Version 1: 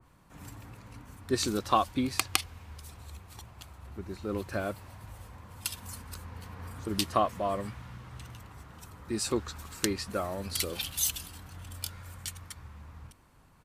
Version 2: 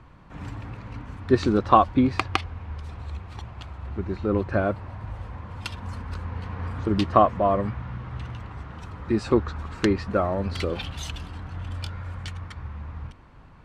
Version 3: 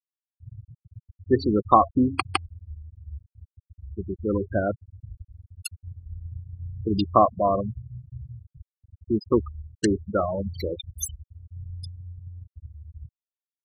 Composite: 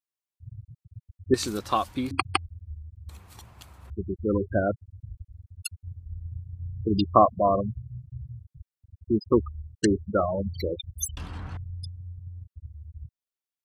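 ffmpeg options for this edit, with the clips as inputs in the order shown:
-filter_complex "[0:a]asplit=2[a][b];[2:a]asplit=4[c][d][e][f];[c]atrim=end=1.342[g];[a]atrim=start=1.338:end=2.112[h];[d]atrim=start=2.108:end=3.092[i];[b]atrim=start=3.088:end=3.902[j];[e]atrim=start=3.898:end=11.172[k];[1:a]atrim=start=11.168:end=11.572[l];[f]atrim=start=11.568[m];[g][h]acrossfade=d=0.004:c1=hsin:c2=hsin[n];[n][i]acrossfade=d=0.004:c1=hsin:c2=hsin[o];[o][j]acrossfade=d=0.004:c1=hsin:c2=hsin[p];[p][k]acrossfade=d=0.004:c1=hsin:c2=hsin[q];[q][l]acrossfade=d=0.004:c1=hsin:c2=hsin[r];[r][m]acrossfade=d=0.004:c1=hsin:c2=hsin"

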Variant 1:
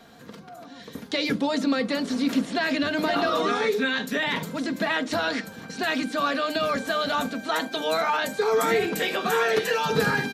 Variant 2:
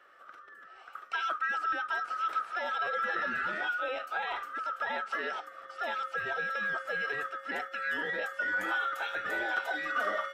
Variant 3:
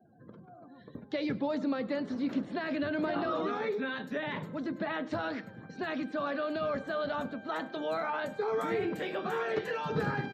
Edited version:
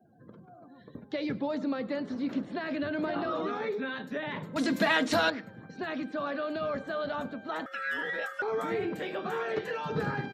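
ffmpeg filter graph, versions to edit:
-filter_complex "[2:a]asplit=3[a][b][c];[a]atrim=end=4.562[d];[0:a]atrim=start=4.558:end=5.302[e];[b]atrim=start=5.298:end=7.662[f];[1:a]atrim=start=7.658:end=8.422[g];[c]atrim=start=8.418[h];[d][e]acrossfade=d=0.004:c1=hsin:c2=hsin[i];[i][f]acrossfade=d=0.004:c1=hsin:c2=hsin[j];[j][g]acrossfade=d=0.004:c1=hsin:c2=hsin[k];[k][h]acrossfade=d=0.004:c1=hsin:c2=hsin"

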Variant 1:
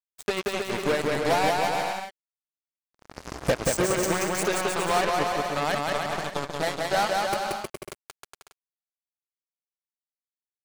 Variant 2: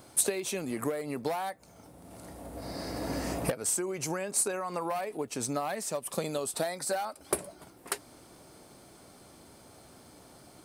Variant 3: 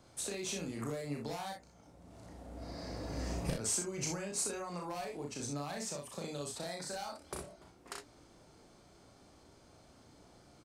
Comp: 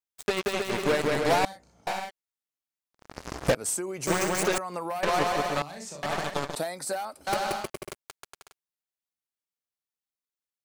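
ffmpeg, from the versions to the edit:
-filter_complex "[2:a]asplit=2[a][b];[1:a]asplit=3[c][d][e];[0:a]asplit=6[f][g][h][i][j][k];[f]atrim=end=1.452[l];[a]atrim=start=1.448:end=1.872[m];[g]atrim=start=1.868:end=3.552[n];[c]atrim=start=3.548:end=4.072[o];[h]atrim=start=4.068:end=4.582[p];[d]atrim=start=4.578:end=5.032[q];[i]atrim=start=5.028:end=5.622[r];[b]atrim=start=5.618:end=6.032[s];[j]atrim=start=6.028:end=6.552[t];[e]atrim=start=6.548:end=7.272[u];[k]atrim=start=7.268[v];[l][m]acrossfade=d=0.004:c1=hsin:c2=hsin[w];[w][n]acrossfade=d=0.004:c1=hsin:c2=hsin[x];[x][o]acrossfade=d=0.004:c1=hsin:c2=hsin[y];[y][p]acrossfade=d=0.004:c1=hsin:c2=hsin[z];[z][q]acrossfade=d=0.004:c1=hsin:c2=hsin[aa];[aa][r]acrossfade=d=0.004:c1=hsin:c2=hsin[ab];[ab][s]acrossfade=d=0.004:c1=hsin:c2=hsin[ac];[ac][t]acrossfade=d=0.004:c1=hsin:c2=hsin[ad];[ad][u]acrossfade=d=0.004:c1=hsin:c2=hsin[ae];[ae][v]acrossfade=d=0.004:c1=hsin:c2=hsin"

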